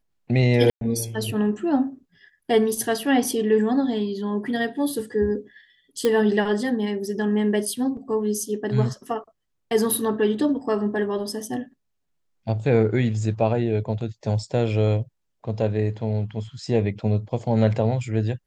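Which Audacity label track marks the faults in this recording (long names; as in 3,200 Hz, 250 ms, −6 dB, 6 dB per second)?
0.700000	0.810000	drop-out 112 ms
6.050000	6.050000	click −9 dBFS
7.970000	7.970000	drop-out 2.6 ms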